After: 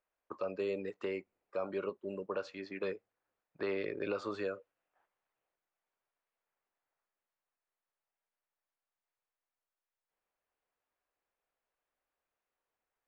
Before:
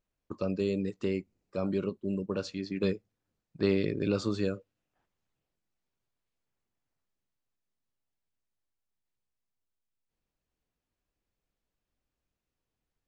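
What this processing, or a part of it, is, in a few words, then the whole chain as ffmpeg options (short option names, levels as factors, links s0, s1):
DJ mixer with the lows and highs turned down: -filter_complex "[0:a]acrossover=split=470 2400:gain=0.0794 1 0.141[s0][s1][s2];[s0][s1][s2]amix=inputs=3:normalize=0,alimiter=level_in=2.11:limit=0.0631:level=0:latency=1:release=186,volume=0.473,volume=1.68"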